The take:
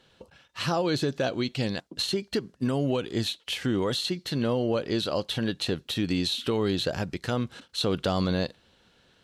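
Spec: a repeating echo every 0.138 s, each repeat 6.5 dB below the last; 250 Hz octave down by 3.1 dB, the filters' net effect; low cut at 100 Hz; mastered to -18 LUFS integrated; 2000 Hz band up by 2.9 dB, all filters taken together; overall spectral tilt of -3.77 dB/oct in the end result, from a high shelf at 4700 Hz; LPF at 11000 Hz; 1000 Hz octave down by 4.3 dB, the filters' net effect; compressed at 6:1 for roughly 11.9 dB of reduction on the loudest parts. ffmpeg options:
-af "highpass=100,lowpass=11k,equalizer=f=250:t=o:g=-3.5,equalizer=f=1k:t=o:g=-7.5,equalizer=f=2k:t=o:g=4.5,highshelf=f=4.7k:g=8.5,acompressor=threshold=-35dB:ratio=6,aecho=1:1:138|276|414|552|690|828:0.473|0.222|0.105|0.0491|0.0231|0.0109,volume=18.5dB"

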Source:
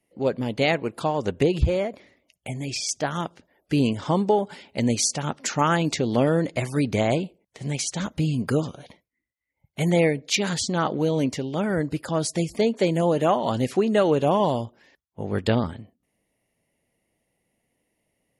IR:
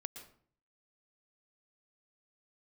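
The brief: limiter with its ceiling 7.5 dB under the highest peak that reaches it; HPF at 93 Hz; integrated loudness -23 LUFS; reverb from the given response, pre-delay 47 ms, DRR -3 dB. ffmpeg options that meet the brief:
-filter_complex "[0:a]highpass=93,alimiter=limit=-15.5dB:level=0:latency=1,asplit=2[a][b];[1:a]atrim=start_sample=2205,adelay=47[c];[b][c]afir=irnorm=-1:irlink=0,volume=6dB[d];[a][d]amix=inputs=2:normalize=0,volume=-1dB"

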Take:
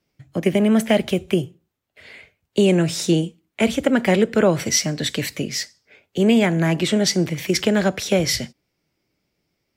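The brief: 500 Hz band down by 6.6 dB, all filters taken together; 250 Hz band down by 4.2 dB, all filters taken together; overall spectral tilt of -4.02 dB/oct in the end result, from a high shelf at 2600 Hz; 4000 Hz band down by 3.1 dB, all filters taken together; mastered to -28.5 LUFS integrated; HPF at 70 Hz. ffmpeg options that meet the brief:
-af "highpass=70,equalizer=f=250:t=o:g=-4,equalizer=f=500:t=o:g=-7.5,highshelf=f=2.6k:g=4,equalizer=f=4k:t=o:g=-8.5,volume=-5dB"

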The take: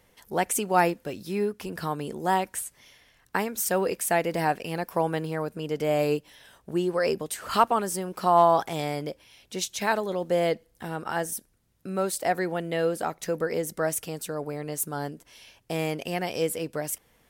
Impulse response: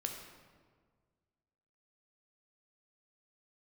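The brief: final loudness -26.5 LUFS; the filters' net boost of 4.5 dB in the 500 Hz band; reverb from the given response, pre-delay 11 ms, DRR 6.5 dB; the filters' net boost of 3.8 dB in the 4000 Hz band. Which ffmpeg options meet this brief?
-filter_complex "[0:a]equalizer=f=500:t=o:g=5.5,equalizer=f=4k:t=o:g=5,asplit=2[a][b];[1:a]atrim=start_sample=2205,adelay=11[c];[b][c]afir=irnorm=-1:irlink=0,volume=-6.5dB[d];[a][d]amix=inputs=2:normalize=0,volume=-2.5dB"

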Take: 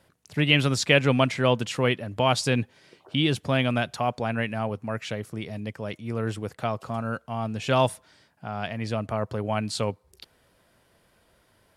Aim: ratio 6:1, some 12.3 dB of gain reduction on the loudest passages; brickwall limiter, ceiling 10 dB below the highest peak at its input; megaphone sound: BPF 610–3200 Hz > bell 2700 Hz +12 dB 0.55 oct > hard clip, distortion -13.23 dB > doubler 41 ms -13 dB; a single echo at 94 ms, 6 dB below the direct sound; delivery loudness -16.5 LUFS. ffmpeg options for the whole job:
-filter_complex "[0:a]acompressor=threshold=-28dB:ratio=6,alimiter=limit=-23.5dB:level=0:latency=1,highpass=610,lowpass=3.2k,equalizer=f=2.7k:t=o:w=0.55:g=12,aecho=1:1:94:0.501,asoftclip=type=hard:threshold=-28.5dB,asplit=2[a][b];[b]adelay=41,volume=-13dB[c];[a][c]amix=inputs=2:normalize=0,volume=20dB"

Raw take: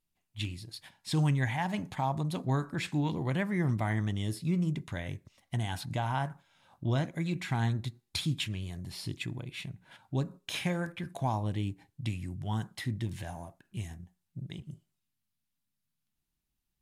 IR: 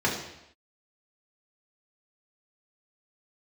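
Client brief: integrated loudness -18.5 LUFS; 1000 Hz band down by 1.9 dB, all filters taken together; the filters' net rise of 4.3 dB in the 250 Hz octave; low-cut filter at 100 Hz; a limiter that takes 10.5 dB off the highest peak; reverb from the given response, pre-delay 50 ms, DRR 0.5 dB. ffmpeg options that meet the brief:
-filter_complex "[0:a]highpass=100,equalizer=f=250:t=o:g=7,equalizer=f=1k:t=o:g=-3,alimiter=level_in=1.5dB:limit=-24dB:level=0:latency=1,volume=-1.5dB,asplit=2[a][b];[1:a]atrim=start_sample=2205,adelay=50[c];[b][c]afir=irnorm=-1:irlink=0,volume=-13.5dB[d];[a][d]amix=inputs=2:normalize=0,volume=13.5dB"

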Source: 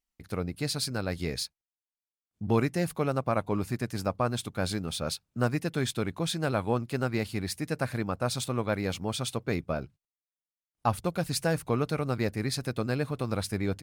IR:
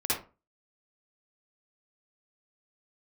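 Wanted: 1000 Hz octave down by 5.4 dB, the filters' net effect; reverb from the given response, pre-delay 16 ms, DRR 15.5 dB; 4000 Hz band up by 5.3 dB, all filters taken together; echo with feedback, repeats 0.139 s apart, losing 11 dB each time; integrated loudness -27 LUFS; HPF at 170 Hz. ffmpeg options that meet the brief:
-filter_complex "[0:a]highpass=170,equalizer=f=1k:t=o:g=-8,equalizer=f=4k:t=o:g=6.5,aecho=1:1:139|278|417:0.282|0.0789|0.0221,asplit=2[a][b];[1:a]atrim=start_sample=2205,adelay=16[c];[b][c]afir=irnorm=-1:irlink=0,volume=-23.5dB[d];[a][d]amix=inputs=2:normalize=0,volume=4.5dB"

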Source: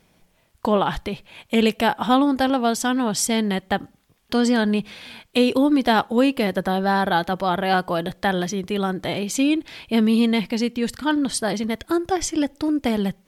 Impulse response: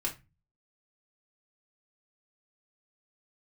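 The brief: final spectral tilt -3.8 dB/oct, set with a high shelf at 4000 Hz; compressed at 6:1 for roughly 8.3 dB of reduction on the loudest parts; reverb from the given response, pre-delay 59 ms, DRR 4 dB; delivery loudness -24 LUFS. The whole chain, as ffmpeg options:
-filter_complex "[0:a]highshelf=f=4k:g=6,acompressor=threshold=-22dB:ratio=6,asplit=2[a][b];[1:a]atrim=start_sample=2205,adelay=59[c];[b][c]afir=irnorm=-1:irlink=0,volume=-7.5dB[d];[a][d]amix=inputs=2:normalize=0,volume=1dB"

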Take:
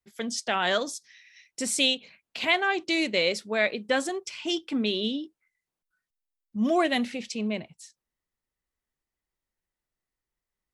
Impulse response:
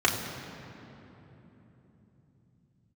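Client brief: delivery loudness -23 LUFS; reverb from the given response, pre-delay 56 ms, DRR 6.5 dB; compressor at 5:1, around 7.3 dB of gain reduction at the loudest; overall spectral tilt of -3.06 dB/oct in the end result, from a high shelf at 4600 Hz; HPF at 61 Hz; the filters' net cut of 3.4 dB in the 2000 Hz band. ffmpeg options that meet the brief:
-filter_complex "[0:a]highpass=61,equalizer=f=2k:t=o:g=-3.5,highshelf=f=4.6k:g=-3.5,acompressor=threshold=-28dB:ratio=5,asplit=2[a][b];[1:a]atrim=start_sample=2205,adelay=56[c];[b][c]afir=irnorm=-1:irlink=0,volume=-21.5dB[d];[a][d]amix=inputs=2:normalize=0,volume=9.5dB"

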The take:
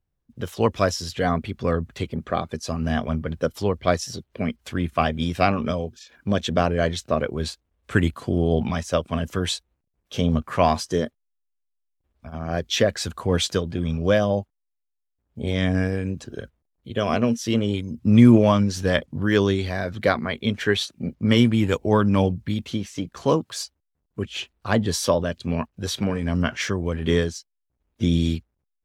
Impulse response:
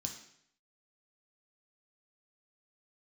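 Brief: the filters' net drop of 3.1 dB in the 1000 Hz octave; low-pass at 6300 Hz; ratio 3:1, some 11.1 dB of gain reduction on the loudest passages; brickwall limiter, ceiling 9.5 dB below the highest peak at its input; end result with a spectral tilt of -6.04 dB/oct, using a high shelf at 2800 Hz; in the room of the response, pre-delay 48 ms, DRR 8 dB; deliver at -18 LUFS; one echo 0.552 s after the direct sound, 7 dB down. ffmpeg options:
-filter_complex "[0:a]lowpass=6.3k,equalizer=f=1k:t=o:g=-4,highshelf=f=2.8k:g=-3.5,acompressor=threshold=-23dB:ratio=3,alimiter=limit=-18dB:level=0:latency=1,aecho=1:1:552:0.447,asplit=2[a][b];[1:a]atrim=start_sample=2205,adelay=48[c];[b][c]afir=irnorm=-1:irlink=0,volume=-5.5dB[d];[a][d]amix=inputs=2:normalize=0,volume=10dB"

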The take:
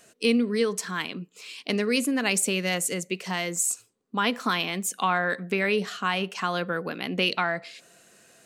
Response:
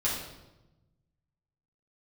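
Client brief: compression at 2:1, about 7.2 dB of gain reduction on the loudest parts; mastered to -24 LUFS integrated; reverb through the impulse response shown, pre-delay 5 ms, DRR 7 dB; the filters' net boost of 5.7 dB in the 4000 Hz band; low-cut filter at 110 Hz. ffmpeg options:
-filter_complex "[0:a]highpass=110,equalizer=f=4k:t=o:g=8,acompressor=threshold=-30dB:ratio=2,asplit=2[a][b];[1:a]atrim=start_sample=2205,adelay=5[c];[b][c]afir=irnorm=-1:irlink=0,volume=-15dB[d];[a][d]amix=inputs=2:normalize=0,volume=5.5dB"

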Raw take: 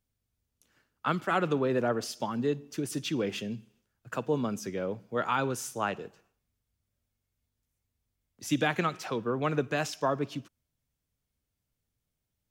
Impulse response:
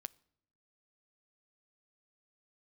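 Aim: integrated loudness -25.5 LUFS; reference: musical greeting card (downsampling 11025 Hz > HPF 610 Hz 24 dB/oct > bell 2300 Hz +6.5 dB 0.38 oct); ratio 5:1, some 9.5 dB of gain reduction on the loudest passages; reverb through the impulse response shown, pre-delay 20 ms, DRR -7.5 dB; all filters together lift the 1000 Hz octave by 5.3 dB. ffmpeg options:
-filter_complex "[0:a]equalizer=f=1k:t=o:g=7,acompressor=threshold=-30dB:ratio=5,asplit=2[a][b];[1:a]atrim=start_sample=2205,adelay=20[c];[b][c]afir=irnorm=-1:irlink=0,volume=12dB[d];[a][d]amix=inputs=2:normalize=0,aresample=11025,aresample=44100,highpass=f=610:w=0.5412,highpass=f=610:w=1.3066,equalizer=f=2.3k:t=o:w=0.38:g=6.5,volume=4.5dB"

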